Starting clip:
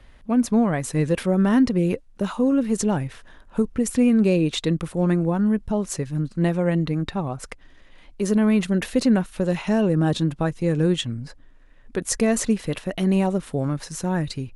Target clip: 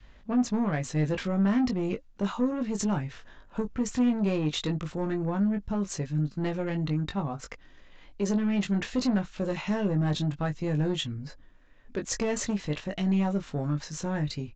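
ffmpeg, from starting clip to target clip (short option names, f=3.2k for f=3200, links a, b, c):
-filter_complex "[0:a]adynamicequalizer=threshold=0.0158:dfrequency=500:dqfactor=1.2:tfrequency=500:tqfactor=1.2:attack=5:release=100:ratio=0.375:range=2:mode=cutabove:tftype=bell,aresample=16000,asoftclip=type=tanh:threshold=-18dB,aresample=44100,asplit=2[a][b];[b]adelay=20,volume=-5.5dB[c];[a][c]amix=inputs=2:normalize=0,volume=-4dB"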